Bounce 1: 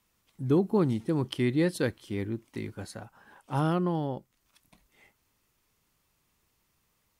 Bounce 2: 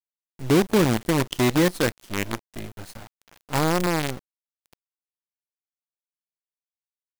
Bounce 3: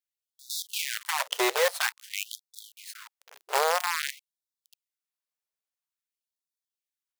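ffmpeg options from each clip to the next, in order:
ffmpeg -i in.wav -af "acrusher=bits=5:dc=4:mix=0:aa=0.000001,volume=5dB" out.wav
ffmpeg -i in.wav -filter_complex "[0:a]asplit=2[link_01][link_02];[link_02]aeval=exprs='0.119*(abs(mod(val(0)/0.119+3,4)-2)-1)':channel_layout=same,volume=-10dB[link_03];[link_01][link_03]amix=inputs=2:normalize=0,afftfilt=real='re*gte(b*sr/1024,370*pow(3500/370,0.5+0.5*sin(2*PI*0.5*pts/sr)))':imag='im*gte(b*sr/1024,370*pow(3500/370,0.5+0.5*sin(2*PI*0.5*pts/sr)))':win_size=1024:overlap=0.75" out.wav

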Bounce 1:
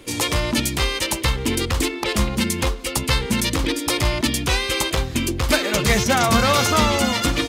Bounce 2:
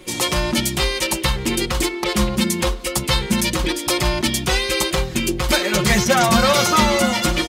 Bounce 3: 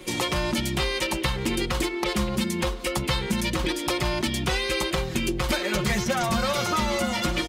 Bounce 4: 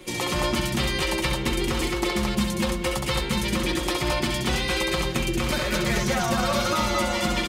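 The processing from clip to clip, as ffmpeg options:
ffmpeg -i in.wav -af "aecho=1:1:5.5:0.74" out.wav
ffmpeg -i in.wav -filter_complex "[0:a]acrossover=split=85|4000[link_01][link_02][link_03];[link_01]acompressor=threshold=-31dB:ratio=4[link_04];[link_02]acompressor=threshold=-24dB:ratio=4[link_05];[link_03]acompressor=threshold=-37dB:ratio=4[link_06];[link_04][link_05][link_06]amix=inputs=3:normalize=0" out.wav
ffmpeg -i in.wav -af "aecho=1:1:67.06|218.7:0.631|0.794,volume=-2dB" out.wav

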